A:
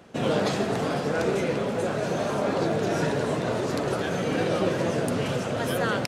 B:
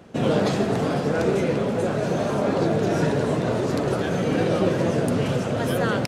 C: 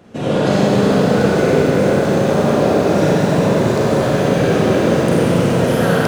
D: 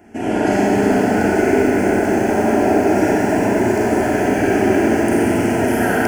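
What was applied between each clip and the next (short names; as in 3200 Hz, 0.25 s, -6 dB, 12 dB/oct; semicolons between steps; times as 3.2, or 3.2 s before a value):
low shelf 500 Hz +6 dB
Schroeder reverb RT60 3.5 s, combs from 31 ms, DRR -7 dB; lo-fi delay 0.374 s, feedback 80%, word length 6-bit, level -11 dB
fixed phaser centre 770 Hz, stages 8; gain +3 dB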